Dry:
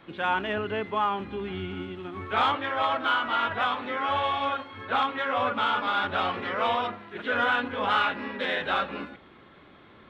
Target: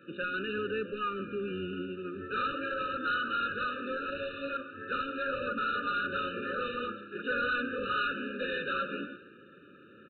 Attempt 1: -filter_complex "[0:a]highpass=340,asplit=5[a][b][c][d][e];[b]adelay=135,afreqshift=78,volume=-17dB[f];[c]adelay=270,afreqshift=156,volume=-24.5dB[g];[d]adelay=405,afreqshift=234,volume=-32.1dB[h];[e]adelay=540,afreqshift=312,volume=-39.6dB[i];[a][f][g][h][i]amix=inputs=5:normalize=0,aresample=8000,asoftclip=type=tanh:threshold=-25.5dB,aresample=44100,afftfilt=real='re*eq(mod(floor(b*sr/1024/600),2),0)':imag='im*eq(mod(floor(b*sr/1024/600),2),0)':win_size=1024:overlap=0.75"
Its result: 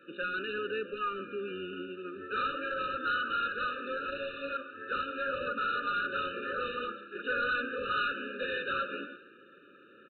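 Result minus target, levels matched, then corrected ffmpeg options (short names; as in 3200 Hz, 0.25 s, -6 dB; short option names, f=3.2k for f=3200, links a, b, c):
125 Hz band -6.0 dB
-filter_complex "[0:a]highpass=160,asplit=5[a][b][c][d][e];[b]adelay=135,afreqshift=78,volume=-17dB[f];[c]adelay=270,afreqshift=156,volume=-24.5dB[g];[d]adelay=405,afreqshift=234,volume=-32.1dB[h];[e]adelay=540,afreqshift=312,volume=-39.6dB[i];[a][f][g][h][i]amix=inputs=5:normalize=0,aresample=8000,asoftclip=type=tanh:threshold=-25.5dB,aresample=44100,afftfilt=real='re*eq(mod(floor(b*sr/1024/600),2),0)':imag='im*eq(mod(floor(b*sr/1024/600),2),0)':win_size=1024:overlap=0.75"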